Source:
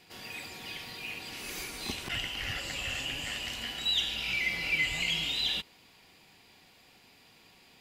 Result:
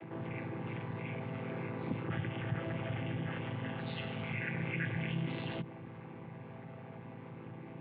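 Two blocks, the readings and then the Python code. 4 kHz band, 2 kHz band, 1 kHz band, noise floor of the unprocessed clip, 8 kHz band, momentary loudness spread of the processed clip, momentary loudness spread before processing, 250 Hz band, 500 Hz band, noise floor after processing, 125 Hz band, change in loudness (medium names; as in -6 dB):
-20.5 dB, -9.5 dB, +1.0 dB, -60 dBFS, under -40 dB, 12 LU, 12 LU, +8.5 dB, +6.0 dB, -49 dBFS, +10.5 dB, -8.0 dB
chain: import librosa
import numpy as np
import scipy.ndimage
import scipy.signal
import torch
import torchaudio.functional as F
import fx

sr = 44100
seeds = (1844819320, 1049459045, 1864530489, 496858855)

y = fx.chord_vocoder(x, sr, chord='minor triad', root=45)
y = scipy.ndimage.gaussian_filter1d(y, 4.3, mode='constant')
y = fx.env_flatten(y, sr, amount_pct=50)
y = F.gain(torch.from_numpy(y), -5.0).numpy()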